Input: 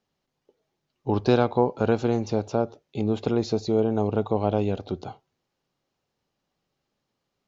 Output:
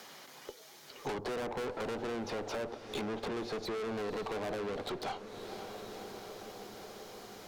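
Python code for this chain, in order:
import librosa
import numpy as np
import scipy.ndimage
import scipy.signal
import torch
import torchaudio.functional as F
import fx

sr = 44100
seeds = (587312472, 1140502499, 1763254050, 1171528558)

y = fx.env_lowpass_down(x, sr, base_hz=570.0, full_db=-20.0)
y = scipy.signal.sosfilt(scipy.signal.butter(2, 140.0, 'highpass', fs=sr, output='sos'), y)
y = fx.tilt_eq(y, sr, slope=4.5)
y = fx.notch(y, sr, hz=2700.0, q=13.0)
y = fx.tube_stage(y, sr, drive_db=45.0, bias=0.35)
y = fx.echo_diffused(y, sr, ms=526, feedback_pct=61, wet_db=-15.0)
y = fx.band_squash(y, sr, depth_pct=70)
y = y * librosa.db_to_amplitude(10.0)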